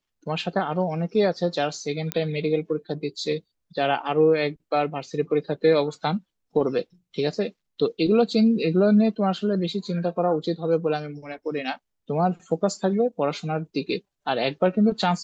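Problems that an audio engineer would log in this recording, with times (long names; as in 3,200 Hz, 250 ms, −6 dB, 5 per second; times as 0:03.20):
0:02.12: click −9 dBFS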